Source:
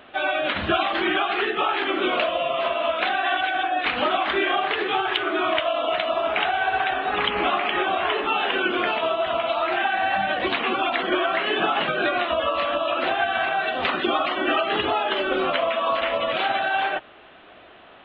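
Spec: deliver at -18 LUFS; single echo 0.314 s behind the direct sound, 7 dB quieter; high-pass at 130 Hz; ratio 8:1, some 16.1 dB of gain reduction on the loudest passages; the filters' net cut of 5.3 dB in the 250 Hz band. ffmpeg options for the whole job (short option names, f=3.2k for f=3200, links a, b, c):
-af "highpass=130,equalizer=f=250:t=o:g=-8.5,acompressor=threshold=-36dB:ratio=8,aecho=1:1:314:0.447,volume=19dB"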